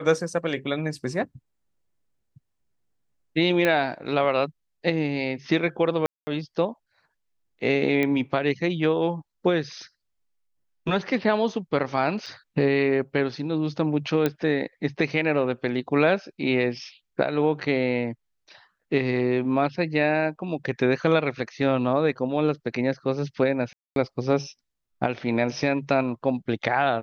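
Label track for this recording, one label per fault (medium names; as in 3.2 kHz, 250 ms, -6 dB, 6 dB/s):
3.650000	3.650000	pop -10 dBFS
6.060000	6.270000	dropout 210 ms
8.030000	8.030000	pop -13 dBFS
12.260000	12.270000	dropout 5.1 ms
14.260000	14.260000	pop -10 dBFS
23.730000	23.960000	dropout 232 ms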